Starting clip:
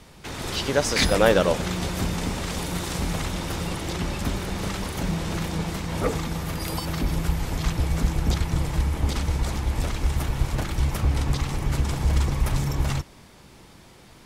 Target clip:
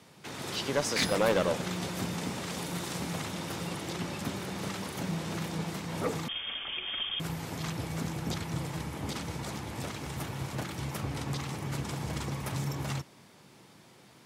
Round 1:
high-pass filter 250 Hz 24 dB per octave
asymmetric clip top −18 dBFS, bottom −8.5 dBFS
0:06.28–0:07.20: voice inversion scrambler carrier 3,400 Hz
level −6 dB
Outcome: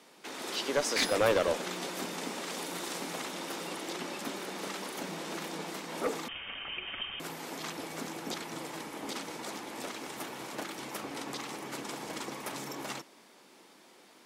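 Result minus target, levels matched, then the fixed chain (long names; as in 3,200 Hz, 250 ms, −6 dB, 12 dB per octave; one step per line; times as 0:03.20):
125 Hz band −13.5 dB
high-pass filter 110 Hz 24 dB per octave
asymmetric clip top −18 dBFS, bottom −8.5 dBFS
0:06.28–0:07.20: voice inversion scrambler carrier 3,400 Hz
level −6 dB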